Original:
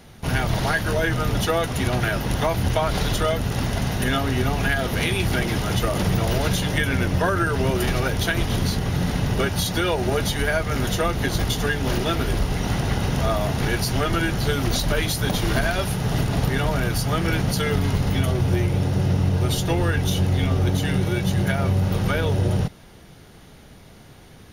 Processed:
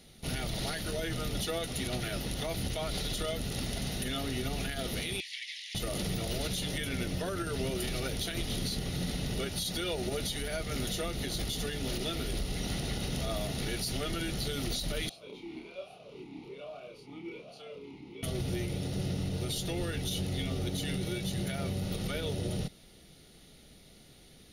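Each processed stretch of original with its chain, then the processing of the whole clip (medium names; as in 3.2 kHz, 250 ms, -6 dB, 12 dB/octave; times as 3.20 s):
5.20–5.75 s: steep high-pass 1.8 kHz 96 dB/octave + distance through air 100 m
15.09–18.23 s: doubling 29 ms -3 dB + talking filter a-u 1.2 Hz
whole clip: fifteen-band graphic EQ 100 Hz -8 dB, 1 kHz -11 dB, 4 kHz +7 dB, 10 kHz +7 dB; peak limiter -15 dBFS; band-stop 1.6 kHz, Q 7.8; trim -9 dB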